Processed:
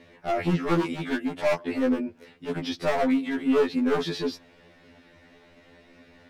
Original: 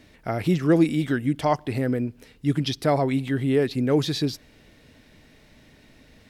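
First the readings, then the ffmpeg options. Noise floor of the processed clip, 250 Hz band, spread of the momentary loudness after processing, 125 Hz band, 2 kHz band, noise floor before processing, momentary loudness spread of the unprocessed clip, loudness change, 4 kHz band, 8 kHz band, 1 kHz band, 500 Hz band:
−56 dBFS, −3.0 dB, 9 LU, −9.5 dB, +0.5 dB, −55 dBFS, 9 LU, −2.5 dB, −4.0 dB, −5.5 dB, −2.0 dB, −1.0 dB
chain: -filter_complex "[0:a]asplit=2[link_01][link_02];[link_02]highpass=frequency=720:poles=1,volume=15dB,asoftclip=type=tanh:threshold=-8dB[link_03];[link_01][link_03]amix=inputs=2:normalize=0,lowpass=frequency=1100:poles=1,volume=-6dB,aeval=exprs='0.15*(abs(mod(val(0)/0.15+3,4)-2)-1)':channel_layout=same,afftfilt=real='re*2*eq(mod(b,4),0)':imag='im*2*eq(mod(b,4),0)':win_size=2048:overlap=0.75"

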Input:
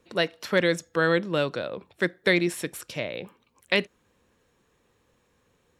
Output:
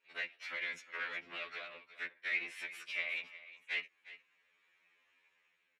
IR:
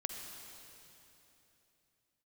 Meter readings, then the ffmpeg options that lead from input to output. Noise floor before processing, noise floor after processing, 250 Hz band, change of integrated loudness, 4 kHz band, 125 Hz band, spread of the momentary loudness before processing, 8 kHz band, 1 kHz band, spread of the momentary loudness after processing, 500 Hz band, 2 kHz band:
−69 dBFS, −77 dBFS, −34.0 dB, −13.5 dB, −14.0 dB, below −35 dB, 11 LU, −19.0 dB, −17.5 dB, 15 LU, −29.0 dB, −9.5 dB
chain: -af "dynaudnorm=framelen=160:gausssize=7:maxgain=6dB,alimiter=limit=-9.5dB:level=0:latency=1:release=38,acompressor=threshold=-24dB:ratio=6,afftfilt=real='hypot(re,im)*cos(2*PI*random(0))':imag='hypot(re,im)*sin(2*PI*random(1))':win_size=512:overlap=0.75,aeval=exprs='(tanh(35.5*val(0)+0.5)-tanh(0.5))/35.5':channel_layout=same,bandpass=frequency=2300:width_type=q:width=4:csg=0,aecho=1:1:359:0.158,afftfilt=real='re*2*eq(mod(b,4),0)':imag='im*2*eq(mod(b,4),0)':win_size=2048:overlap=0.75,volume=12dB"

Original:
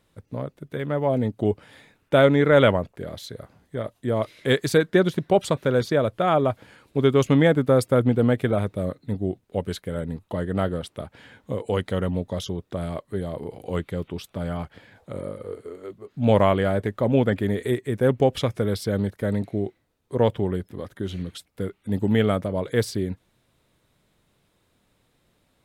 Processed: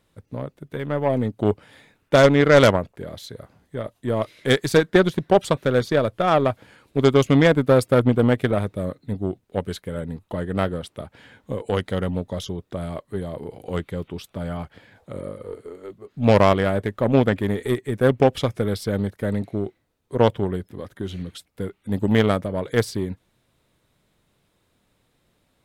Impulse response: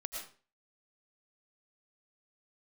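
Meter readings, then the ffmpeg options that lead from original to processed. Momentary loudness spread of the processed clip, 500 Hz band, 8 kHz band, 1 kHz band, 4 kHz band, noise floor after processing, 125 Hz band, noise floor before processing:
18 LU, +2.0 dB, +2.0 dB, +3.0 dB, +3.0 dB, −69 dBFS, +1.5 dB, −68 dBFS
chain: -af "aeval=exprs='0.631*(cos(1*acos(clip(val(0)/0.631,-1,1)))-cos(1*PI/2))+0.0398*(cos(5*acos(clip(val(0)/0.631,-1,1)))-cos(5*PI/2))+0.1*(cos(6*acos(clip(val(0)/0.631,-1,1)))-cos(6*PI/2))+0.0447*(cos(7*acos(clip(val(0)/0.631,-1,1)))-cos(7*PI/2))+0.0794*(cos(8*acos(clip(val(0)/0.631,-1,1)))-cos(8*PI/2))':channel_layout=same,volume=1.5dB"

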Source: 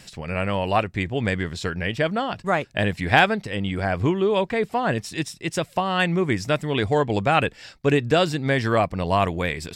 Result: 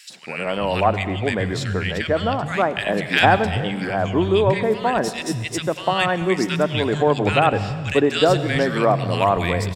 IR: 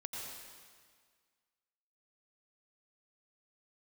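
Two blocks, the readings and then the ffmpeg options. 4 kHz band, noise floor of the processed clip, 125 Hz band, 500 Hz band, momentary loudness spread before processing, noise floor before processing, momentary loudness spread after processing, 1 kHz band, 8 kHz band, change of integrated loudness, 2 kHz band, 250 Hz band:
+3.5 dB, −32 dBFS, +2.0 dB, +3.5 dB, 8 LU, −50 dBFS, 7 LU, +3.0 dB, +4.0 dB, +3.0 dB, +1.5 dB, +2.0 dB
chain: -filter_complex "[0:a]acrossover=split=180|1600[link_01][link_02][link_03];[link_02]adelay=100[link_04];[link_01]adelay=440[link_05];[link_05][link_04][link_03]amix=inputs=3:normalize=0,asplit=2[link_06][link_07];[1:a]atrim=start_sample=2205[link_08];[link_07][link_08]afir=irnorm=-1:irlink=0,volume=-8.5dB[link_09];[link_06][link_09]amix=inputs=2:normalize=0,volume=2dB"

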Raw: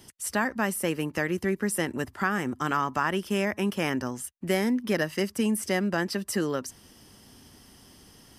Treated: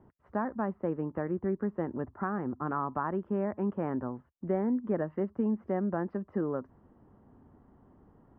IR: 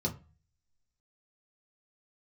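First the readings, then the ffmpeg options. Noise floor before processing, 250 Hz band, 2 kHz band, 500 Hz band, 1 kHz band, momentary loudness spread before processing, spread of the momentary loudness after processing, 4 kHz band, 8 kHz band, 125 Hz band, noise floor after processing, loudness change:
−55 dBFS, −3.5 dB, −16.0 dB, −3.5 dB, −5.0 dB, 5 LU, 5 LU, below −35 dB, below −40 dB, −3.5 dB, −66 dBFS, −5.0 dB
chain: -af "lowpass=frequency=1200:width=0.5412,lowpass=frequency=1200:width=1.3066,volume=-3.5dB"

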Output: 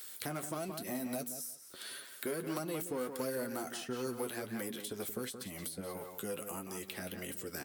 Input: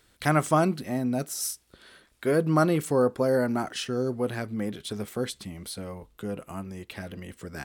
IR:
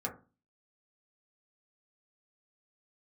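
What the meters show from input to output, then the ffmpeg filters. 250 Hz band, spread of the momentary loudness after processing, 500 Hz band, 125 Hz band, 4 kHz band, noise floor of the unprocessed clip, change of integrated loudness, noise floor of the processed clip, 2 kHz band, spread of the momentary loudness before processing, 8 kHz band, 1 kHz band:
−12.5 dB, 5 LU, −12.5 dB, −17.0 dB, −7.0 dB, −64 dBFS, −12.5 dB, −52 dBFS, −10.0 dB, 16 LU, −5.5 dB, −14.5 dB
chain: -filter_complex "[0:a]asplit=2[link_01][link_02];[link_02]aeval=exprs='0.0708*(abs(mod(val(0)/0.0708+3,4)-2)-1)':channel_layout=same,volume=-10dB[link_03];[link_01][link_03]amix=inputs=2:normalize=0,flanger=delay=6.8:depth=5.4:regen=34:speed=1.5:shape=triangular,lowshelf=frequency=110:gain=-7,acrossover=split=920|1900[link_04][link_05][link_06];[link_04]acompressor=threshold=-37dB:ratio=4[link_07];[link_05]acompressor=threshold=-43dB:ratio=4[link_08];[link_06]acompressor=threshold=-48dB:ratio=4[link_09];[link_07][link_08][link_09]amix=inputs=3:normalize=0,aemphasis=mode=production:type=riaa,asplit=2[link_10][link_11];[link_11]adelay=174,lowpass=frequency=2600:poles=1,volume=-9dB,asplit=2[link_12][link_13];[link_13]adelay=174,lowpass=frequency=2600:poles=1,volume=0.16[link_14];[link_10][link_12][link_14]amix=inputs=3:normalize=0,acrossover=split=460[link_15][link_16];[link_16]acompressor=threshold=-48dB:ratio=6[link_17];[link_15][link_17]amix=inputs=2:normalize=0,volume=6dB"

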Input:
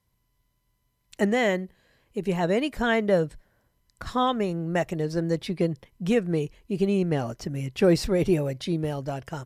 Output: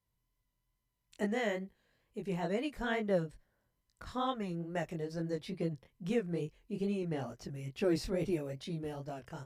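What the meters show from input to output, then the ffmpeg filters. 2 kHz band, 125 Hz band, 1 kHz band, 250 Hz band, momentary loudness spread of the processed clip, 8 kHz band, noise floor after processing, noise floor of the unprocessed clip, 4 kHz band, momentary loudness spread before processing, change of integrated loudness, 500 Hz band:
−11.0 dB, −11.0 dB, −11.0 dB, −10.5 dB, 11 LU, −11.5 dB, −83 dBFS, −73 dBFS, −11.0 dB, 10 LU, −11.0 dB, −11.0 dB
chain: -af "flanger=delay=18.5:depth=5.9:speed=2.3,volume=-8dB"

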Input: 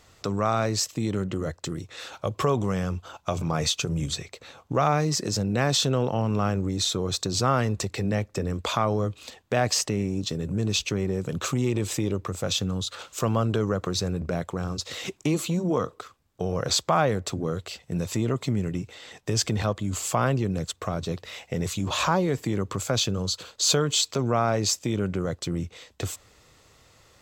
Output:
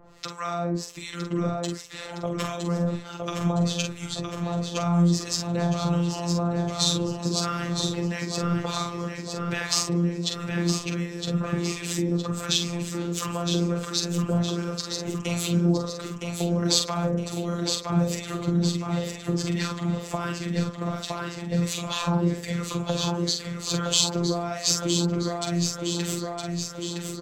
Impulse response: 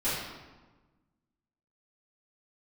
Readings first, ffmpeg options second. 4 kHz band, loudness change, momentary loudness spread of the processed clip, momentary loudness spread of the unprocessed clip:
+1.0 dB, 0.0 dB, 8 LU, 10 LU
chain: -filter_complex "[0:a]acrossover=split=1200[link_01][link_02];[link_01]aeval=exprs='val(0)*(1-1/2+1/2*cos(2*PI*1.4*n/s))':channel_layout=same[link_03];[link_02]aeval=exprs='val(0)*(1-1/2-1/2*cos(2*PI*1.4*n/s))':channel_layout=same[link_04];[link_03][link_04]amix=inputs=2:normalize=0,highshelf=frequency=7200:gain=-5.5,asplit=2[link_05][link_06];[link_06]adelay=46,volume=-6dB[link_07];[link_05][link_07]amix=inputs=2:normalize=0,aecho=1:1:963|1926|2889|3852|4815|5778|6741:0.473|0.251|0.133|0.0704|0.0373|0.0198|0.0105,asplit=2[link_08][link_09];[link_09]acompressor=threshold=-42dB:ratio=6,volume=-1dB[link_10];[link_08][link_10]amix=inputs=2:normalize=0,bandreject=frequency=62.81:width_type=h:width=4,bandreject=frequency=125.62:width_type=h:width=4,bandreject=frequency=188.43:width_type=h:width=4,bandreject=frequency=251.24:width_type=h:width=4,bandreject=frequency=314.05:width_type=h:width=4,bandreject=frequency=376.86:width_type=h:width=4,bandreject=frequency=439.67:width_type=h:width=4,bandreject=frequency=502.48:width_type=h:width=4,bandreject=frequency=565.29:width_type=h:width=4,bandreject=frequency=628.1:width_type=h:width=4,bandreject=frequency=690.91:width_type=h:width=4,bandreject=frequency=753.72:width_type=h:width=4,bandreject=frequency=816.53:width_type=h:width=4,bandreject=frequency=879.34:width_type=h:width=4,bandreject=frequency=942.15:width_type=h:width=4,bandreject=frequency=1004.96:width_type=h:width=4,bandreject=frequency=1067.77:width_type=h:width=4,bandreject=frequency=1130.58:width_type=h:width=4,bandreject=frequency=1193.39:width_type=h:width=4,bandreject=frequency=1256.2:width_type=h:width=4,bandreject=frequency=1319.01:width_type=h:width=4,bandreject=frequency=1381.82:width_type=h:width=4,bandreject=frequency=1444.63:width_type=h:width=4,bandreject=frequency=1507.44:width_type=h:width=4,bandreject=frequency=1570.25:width_type=h:width=4,bandreject=frequency=1633.06:width_type=h:width=4,bandreject=frequency=1695.87:width_type=h:width=4,bandreject=frequency=1758.68:width_type=h:width=4,bandreject=frequency=1821.49:width_type=h:width=4,bandreject=frequency=1884.3:width_type=h:width=4,bandreject=frequency=1947.11:width_type=h:width=4,bandreject=frequency=2009.92:width_type=h:width=4,bandreject=frequency=2072.73:width_type=h:width=4,bandreject=frequency=2135.54:width_type=h:width=4,bandreject=frequency=2198.35:width_type=h:width=4,bandreject=frequency=2261.16:width_type=h:width=4,bandreject=frequency=2323.97:width_type=h:width=4,bandreject=frequency=2386.78:width_type=h:width=4,bandreject=frequency=2449.59:width_type=h:width=4,bandreject=frequency=2512.4:width_type=h:width=4,afftfilt=real='hypot(re,im)*cos(PI*b)':imag='0':win_size=1024:overlap=0.75,acrossover=split=250|3000[link_11][link_12][link_13];[link_12]acompressor=threshold=-33dB:ratio=8[link_14];[link_11][link_14][link_13]amix=inputs=3:normalize=0,volume=6.5dB"

